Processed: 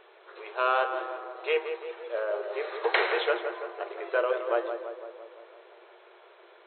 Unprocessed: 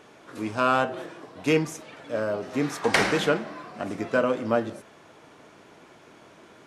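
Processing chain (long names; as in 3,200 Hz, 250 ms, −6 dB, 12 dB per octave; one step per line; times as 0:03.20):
tape delay 169 ms, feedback 68%, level −6.5 dB, low-pass 1,800 Hz
brick-wall band-pass 340–4,200 Hz
level −3 dB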